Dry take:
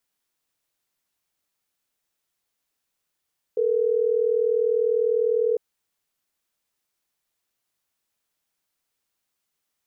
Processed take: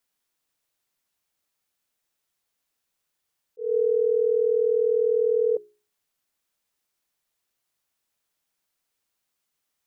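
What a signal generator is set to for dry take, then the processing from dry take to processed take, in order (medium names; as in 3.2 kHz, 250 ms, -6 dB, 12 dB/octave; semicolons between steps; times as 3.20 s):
call progress tone ringback tone, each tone -21.5 dBFS
hum notches 60/120/180/240/300/360/420 Hz; slow attack 192 ms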